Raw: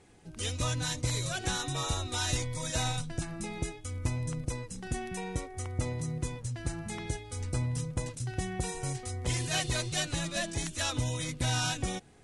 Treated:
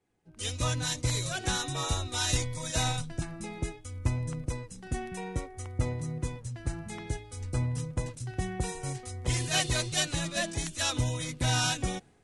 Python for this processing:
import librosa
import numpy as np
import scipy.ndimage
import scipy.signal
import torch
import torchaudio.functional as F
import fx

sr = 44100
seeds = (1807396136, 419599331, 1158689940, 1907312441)

y = fx.band_widen(x, sr, depth_pct=70)
y = y * 10.0 ** (1.5 / 20.0)